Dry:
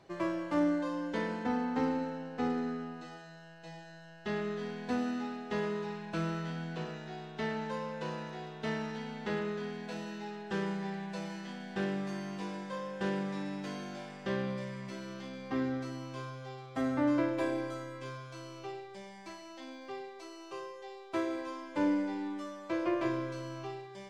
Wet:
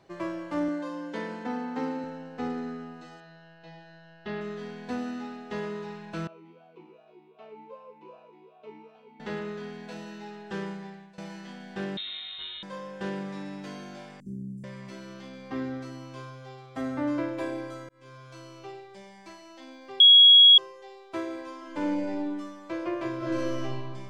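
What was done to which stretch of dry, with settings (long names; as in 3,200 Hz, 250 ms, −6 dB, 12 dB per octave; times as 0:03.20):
0:00.68–0:02.04: high-pass filter 160 Hz
0:03.20–0:04.41: low-pass filter 4,700 Hz 24 dB per octave
0:06.27–0:09.20: formant filter swept between two vowels a-u 2.6 Hz
0:10.62–0:11.18: fade out, to −18.5 dB
0:11.97–0:12.63: voice inversion scrambler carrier 3,900 Hz
0:14.20–0:14.64: inverse Chebyshev band-stop filter 620–4,000 Hz, stop band 50 dB
0:17.89–0:18.32: fade in
0:20.00–0:20.58: beep over 3,320 Hz −10.5 dBFS
0:21.57–0:22.10: thrown reverb, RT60 1.2 s, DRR 0 dB
0:23.17–0:23.63: thrown reverb, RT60 2 s, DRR −9 dB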